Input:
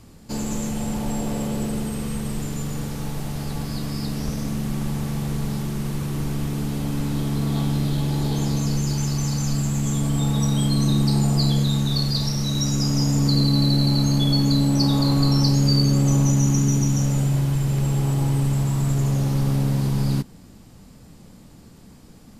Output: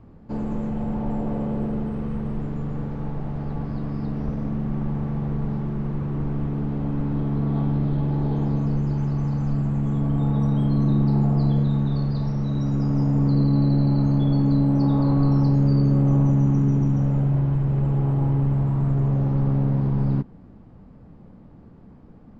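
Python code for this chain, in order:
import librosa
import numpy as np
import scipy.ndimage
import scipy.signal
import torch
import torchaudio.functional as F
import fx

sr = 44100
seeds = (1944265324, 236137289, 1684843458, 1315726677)

y = scipy.signal.sosfilt(scipy.signal.butter(2, 1200.0, 'lowpass', fs=sr, output='sos'), x)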